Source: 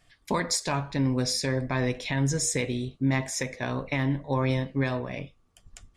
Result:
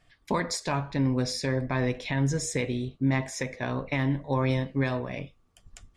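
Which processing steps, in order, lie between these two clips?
high-shelf EQ 5,200 Hz −9 dB, from 0:03.93 −2.5 dB

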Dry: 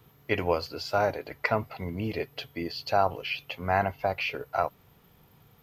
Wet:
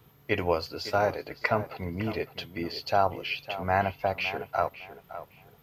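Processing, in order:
tape delay 560 ms, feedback 27%, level −12 dB, low-pass 3,000 Hz

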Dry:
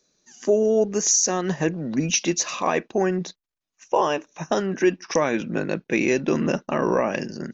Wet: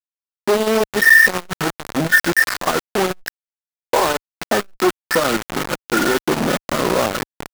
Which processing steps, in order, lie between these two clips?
hearing-aid frequency compression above 1,200 Hz 4 to 1
bit reduction 4 bits
saturating transformer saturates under 800 Hz
level +5 dB

